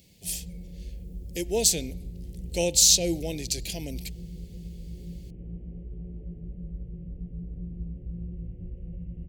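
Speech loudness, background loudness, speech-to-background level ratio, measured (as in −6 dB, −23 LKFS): −24.0 LKFS, −40.5 LKFS, 16.5 dB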